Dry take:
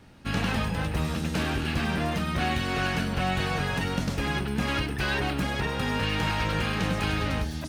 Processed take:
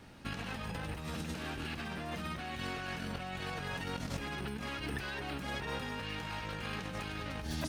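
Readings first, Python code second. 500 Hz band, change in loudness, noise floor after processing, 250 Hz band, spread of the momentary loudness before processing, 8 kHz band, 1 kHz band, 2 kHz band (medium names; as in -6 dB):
-11.0 dB, -12.0 dB, -43 dBFS, -12.5 dB, 2 LU, -9.5 dB, -11.0 dB, -11.0 dB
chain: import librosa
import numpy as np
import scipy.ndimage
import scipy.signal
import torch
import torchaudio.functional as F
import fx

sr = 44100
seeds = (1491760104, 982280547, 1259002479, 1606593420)

y = fx.over_compress(x, sr, threshold_db=-33.0, ratio=-1.0)
y = fx.low_shelf(y, sr, hz=260.0, db=-4.0)
y = F.gain(torch.from_numpy(y), -5.0).numpy()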